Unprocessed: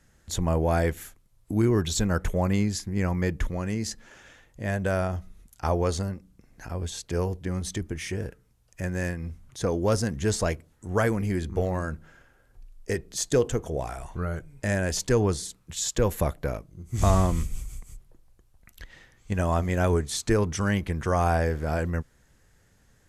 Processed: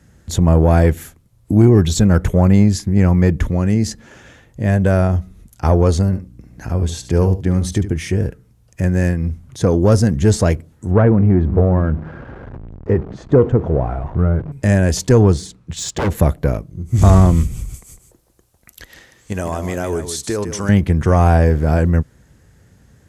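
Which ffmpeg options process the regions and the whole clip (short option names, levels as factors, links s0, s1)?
-filter_complex "[0:a]asettb=1/sr,asplit=3[s0][s1][s2];[s0]atrim=end=6.054[s3];[s1]atrim=start=6.05:end=7.97,asetpts=PTS-STARTPTS,afade=t=in:d=0.004:c=qsin,afade=t=out:st=1.916:d=0.004:c=qsin,aeval=exprs='val(0)+0.00158*(sin(2*PI*60*n/s)+sin(2*PI*2*60*n/s)/2+sin(2*PI*3*60*n/s)/3+sin(2*PI*4*60*n/s)/4+sin(2*PI*5*60*n/s)/5)':c=same,aecho=1:1:73:0.251,atrim=end_sample=84672[s4];[s2]atrim=start=7.966[s5];[s3][s4]acrossfade=d=0.004:c1=hsin:c2=qsin[s6];[s6][s5]acrossfade=d=0.004:c1=qsin:c2=hsin,asettb=1/sr,asplit=3[s7][s8][s9];[s7]atrim=end=10.914[s10];[s8]atrim=start=10.91:end=14.52,asetpts=PTS-STARTPTS,afade=t=in:d=0.004:c=qsin,afade=t=out:st=3.606:d=0.004:c=qsin,aeval=exprs='val(0)+0.5*0.0141*sgn(val(0))':c=same,lowpass=1300[s11];[s9]atrim=start=14.516[s12];[s10][s11]acrossfade=d=0.004:c1=hsin:c2=qsin[s13];[s13][s12]acrossfade=d=0.004:c1=qsin:c2=hsin,asettb=1/sr,asplit=3[s14][s15][s16];[s14]atrim=end=15.324[s17];[s15]atrim=start=15.32:end=16.15,asetpts=PTS-STARTPTS,afade=t=in:d=0.004:c=qsin,afade=t=out:st=0.826:d=0.004:c=qsin,adynamicsmooth=sensitivity=3:basefreq=7000,aeval=exprs='0.0708*(abs(mod(val(0)/0.0708+3,4)-2)-1)':c=same[s18];[s16]atrim=start=16.146[s19];[s17][s18]acrossfade=d=0.004:c1=hsin:c2=qsin[s20];[s20][s19]acrossfade=d=0.004:c1=qsin:c2=hsin,asettb=1/sr,asplit=3[s21][s22][s23];[s21]atrim=end=17.744[s24];[s22]atrim=start=17.74:end=20.69,asetpts=PTS-STARTPTS,afade=t=in:d=0.004:c=qsin,afade=t=out:st=2.946:d=0.004:c=qsin,bass=f=250:g=-12,treble=f=4000:g=7,acompressor=threshold=0.0316:ratio=3:attack=3.2:release=140:knee=1:detection=peak,aecho=1:1:152:0.316,atrim=end_sample=130095[s25];[s23]atrim=start=20.686[s26];[s24][s25]acrossfade=d=0.004:c1=hsin:c2=qsin[s27];[s27][s26]acrossfade=d=0.004:c1=qsin:c2=hsin,highpass=64,lowshelf=f=430:g=10.5,acontrast=50"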